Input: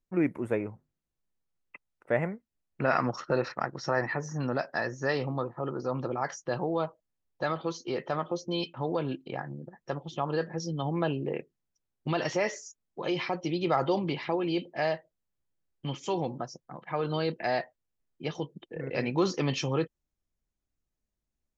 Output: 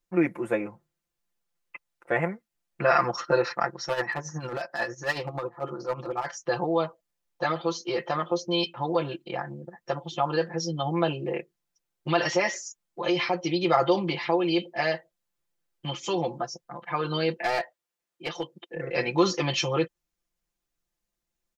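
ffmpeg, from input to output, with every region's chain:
-filter_complex "[0:a]asettb=1/sr,asplit=3[s0][s1][s2];[s0]atrim=end=3.734[s3];[s1]atrim=start=3.73:end=6.4,asetpts=PTS-STARTPTS,afade=t=in:d=0.004:c=qsin,afade=t=out:st=2.666:d=0.004:c=qsin,asoftclip=type=hard:threshold=0.0631,tremolo=f=11:d=0.66[s4];[s2]atrim=start=6.396[s5];[s3][s4]acrossfade=d=0.004:c1=hsin:c2=qsin[s6];[s6][s5]acrossfade=d=0.004:c1=qsin:c2=hsin,asettb=1/sr,asplit=3[s7][s8][s9];[s7]atrim=end=17.374[s10];[s8]atrim=start=17.37:end=18.74,asetpts=PTS-STARTPTS,afade=t=in:d=0.004:c=qsin,afade=t=out:st=1.366:d=0.004:c=qsin,highpass=46,bass=f=250:g=-9,treble=f=4000:g=-1,aeval=exprs='clip(val(0),-1,0.0316)':c=same[s11];[s9]atrim=start=18.736[s12];[s10][s11]acrossfade=d=0.004:c1=hsin:c2=qsin[s13];[s13][s12]acrossfade=d=0.004:c1=qsin:c2=hsin,lowshelf=f=340:g=-9.5,aecho=1:1:5.8:0.9,volume=1.58"

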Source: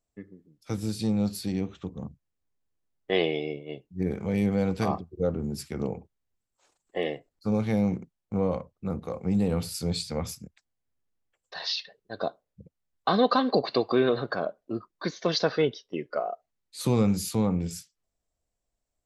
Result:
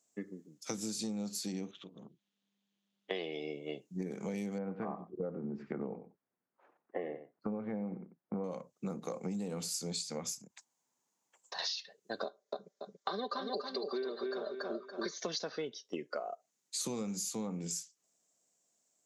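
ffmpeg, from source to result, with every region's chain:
-filter_complex "[0:a]asettb=1/sr,asplit=3[s0][s1][s2];[s0]atrim=end=1.714[s3];[s1]atrim=start=1.71:end=3.11,asetpts=PTS-STARTPTS,afade=t=in:d=0.004:c=qsin,afade=t=out:st=1.396:d=0.004:c=qsin,acompressor=threshold=0.00141:ratio=2:attack=3.2:release=140:knee=1:detection=peak,tremolo=f=200:d=0.71,lowpass=f=3400:t=q:w=4.1[s4];[s2]atrim=start=3.106[s5];[s3][s4]acrossfade=d=0.004:c1=hsin:c2=qsin[s6];[s6][s5]acrossfade=d=0.004:c1=qsin:c2=hsin,asettb=1/sr,asplit=3[s7][s8][s9];[s7]atrim=end=4.584[s10];[s8]atrim=start=4.58:end=8.44,asetpts=PTS-STARTPTS,afade=t=in:d=0.004:c=qsin,afade=t=out:st=3.856:d=0.004:c=qsin,lowpass=f=1800:w=0.5412,lowpass=f=1800:w=1.3066,aecho=1:1:92:0.178,atrim=end_sample=170226[s11];[s9]atrim=start=8.436[s12];[s10][s11]acrossfade=d=0.004:c1=hsin:c2=qsin[s13];[s13][s12]acrossfade=d=0.004:c1=qsin:c2=hsin,asettb=1/sr,asplit=3[s14][s15][s16];[s14]atrim=end=10.374[s17];[s15]atrim=start=10.37:end=11.59,asetpts=PTS-STARTPTS,afade=t=in:d=0.004:c=qsin,afade=t=out:st=1.216:d=0.004:c=qsin,equalizer=f=930:w=2.9:g=12.5,acompressor=threshold=0.00562:ratio=6:attack=3.2:release=140:knee=1:detection=peak[s18];[s16]atrim=start=11.586[s19];[s17][s18]acrossfade=d=0.004:c1=hsin:c2=qsin[s20];[s20][s19]acrossfade=d=0.004:c1=qsin:c2=hsin,asettb=1/sr,asplit=3[s21][s22][s23];[s21]atrim=end=12.244[s24];[s22]atrim=start=12.24:end=15.18,asetpts=PTS-STARTPTS,afade=t=in:d=0.004:c=qsin,afade=t=out:st=2.936:d=0.004:c=qsin,highpass=300,equalizer=f=430:t=q:w=4:g=5,equalizer=f=840:t=q:w=4:g=-5,equalizer=f=2700:t=q:w=4:g=-9,lowpass=f=6000:w=0.5412,lowpass=f=6000:w=1.3066,aecho=1:1:5.1:0.69,atrim=end_sample=129654,aecho=1:1:283|566|849:0.562|0.112|0.0225,atrim=end_sample=129654[s25];[s23]atrim=start=15.176[s26];[s24][s25]acrossfade=d=0.004:c1=hsin:c2=qsin[s27];[s27][s26]acrossfade=d=0.004:c1=qsin:c2=hsin,highpass=f=170:w=0.5412,highpass=f=170:w=1.3066,equalizer=f=6700:w=1.8:g=15,acompressor=threshold=0.0112:ratio=10,volume=1.5"

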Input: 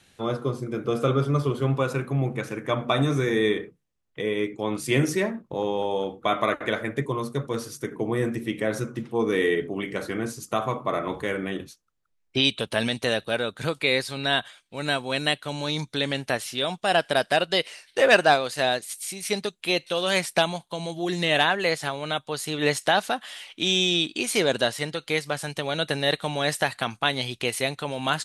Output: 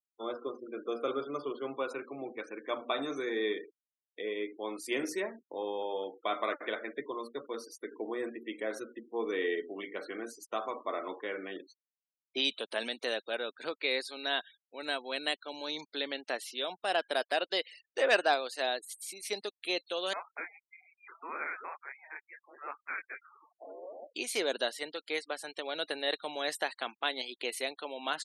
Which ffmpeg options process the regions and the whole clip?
-filter_complex "[0:a]asettb=1/sr,asplit=3[s0][s1][s2];[s0]atrim=end=20.134[s3];[s1]atrim=start=20.13:end=24.15,asetpts=PTS-STARTPTS,afade=t=in:d=0.004:c=qsin,afade=t=out:st=4.016:d=0.004:c=qsin,highpass=f=1000:w=0.5412,highpass=f=1000:w=1.3066,flanger=delay=18.5:depth=6.1:speed=2.4,lowpass=f=2600:t=q:w=0.5098,lowpass=f=2600:t=q:w=0.6013,lowpass=f=2600:t=q:w=0.9,lowpass=f=2600:t=q:w=2.563,afreqshift=-3100[s4];[s2]atrim=start=24.146[s5];[s3][s4]acrossfade=d=0.004:c1=hsin:c2=qsin[s6];[s6][s5]acrossfade=d=0.004:c1=qsin:c2=hsin,highpass=f=290:w=0.5412,highpass=f=290:w=1.3066,equalizer=f=4300:t=o:w=0.34:g=2.5,afftfilt=real='re*gte(hypot(re,im),0.0126)':imag='im*gte(hypot(re,im),0.0126)':win_size=1024:overlap=0.75,volume=0.355"

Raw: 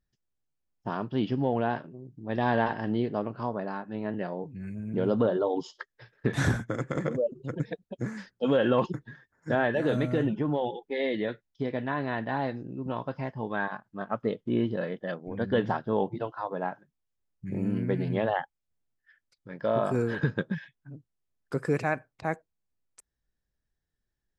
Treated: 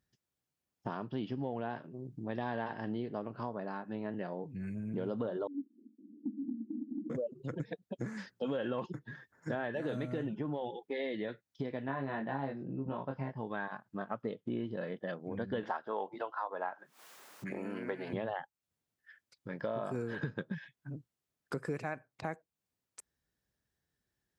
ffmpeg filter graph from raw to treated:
-filter_complex "[0:a]asettb=1/sr,asplit=3[s0][s1][s2];[s0]atrim=end=5.474[s3];[s1]atrim=start=5.47:end=7.1,asetpts=PTS-STARTPTS,afade=t=in:d=0.004:c=qsin,afade=t=out:st=1.626:d=0.004:c=qsin,aeval=exprs='val(0)+0.5*0.0282*sgn(val(0))':c=same,asuperpass=centerf=260:order=8:qfactor=2.7[s4];[s2]atrim=start=7.096[s5];[s3][s4]acrossfade=d=0.004:c1=hsin:c2=qsin[s6];[s6][s5]acrossfade=d=0.004:c1=qsin:c2=hsin,asettb=1/sr,asplit=3[s7][s8][s9];[s7]atrim=end=11.864[s10];[s8]atrim=start=11.86:end=13.37,asetpts=PTS-STARTPTS,afade=t=in:d=0.004:c=qsin,afade=t=out:st=1.506:d=0.004:c=qsin,aemphasis=mode=reproduction:type=75fm,asplit=2[s11][s12];[s12]adelay=22,volume=0.708[s13];[s11][s13]amix=inputs=2:normalize=0,atrim=end_sample=66591[s14];[s9]atrim=start=13.366[s15];[s10][s14]acrossfade=d=0.004:c1=hsin:c2=qsin[s16];[s16][s15]acrossfade=d=0.004:c1=qsin:c2=hsin,asettb=1/sr,asplit=3[s17][s18][s19];[s17]atrim=end=15.634[s20];[s18]atrim=start=15.63:end=18.13,asetpts=PTS-STARTPTS,afade=t=in:d=0.004:c=qsin,afade=t=out:st=2.496:d=0.004:c=qsin,highpass=410,equalizer=f=1200:w=0.76:g=7.5,acompressor=mode=upward:threshold=0.0251:ratio=2.5:attack=3.2:release=140:knee=2.83:detection=peak[s21];[s19]atrim=start=18.126[s22];[s20][s21]acrossfade=d=0.004:c1=hsin:c2=qsin[s23];[s23][s22]acrossfade=d=0.004:c1=qsin:c2=hsin,highpass=89,acompressor=threshold=0.00891:ratio=3,volume=1.41"

